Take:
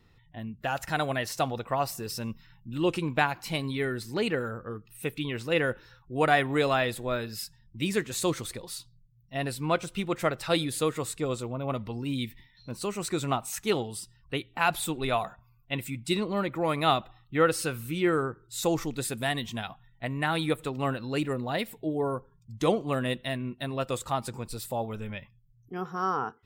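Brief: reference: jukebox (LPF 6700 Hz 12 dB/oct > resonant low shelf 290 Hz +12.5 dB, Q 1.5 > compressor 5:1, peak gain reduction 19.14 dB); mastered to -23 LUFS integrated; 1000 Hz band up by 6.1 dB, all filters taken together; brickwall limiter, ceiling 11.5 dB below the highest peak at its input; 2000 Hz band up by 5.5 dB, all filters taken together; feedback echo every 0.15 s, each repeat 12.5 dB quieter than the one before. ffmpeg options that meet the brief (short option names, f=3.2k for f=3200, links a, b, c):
-af "equalizer=f=1k:t=o:g=8.5,equalizer=f=2k:t=o:g=4.5,alimiter=limit=-14.5dB:level=0:latency=1,lowpass=6.7k,lowshelf=f=290:t=q:w=1.5:g=12.5,aecho=1:1:150|300|450:0.237|0.0569|0.0137,acompressor=threshold=-35dB:ratio=5,volume=15dB"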